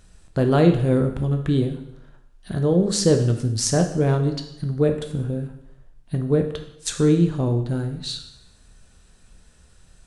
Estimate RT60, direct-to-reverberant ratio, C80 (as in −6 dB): 0.80 s, 5.0 dB, 11.5 dB